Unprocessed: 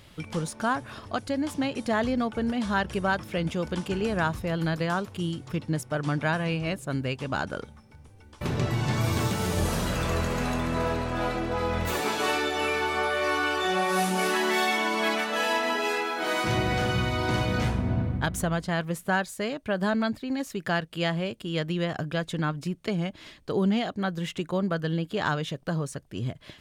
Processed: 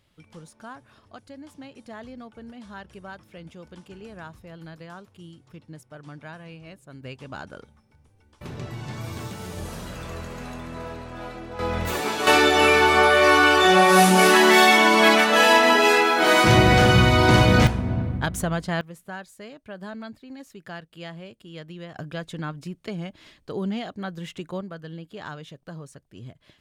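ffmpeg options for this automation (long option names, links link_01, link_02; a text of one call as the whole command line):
ffmpeg -i in.wav -af "asetnsamples=nb_out_samples=441:pad=0,asendcmd='7.03 volume volume -8dB;11.59 volume volume 1.5dB;12.27 volume volume 10.5dB;17.67 volume volume 1.5dB;18.81 volume volume -11dB;21.96 volume volume -4dB;24.61 volume volume -10dB',volume=-14.5dB" out.wav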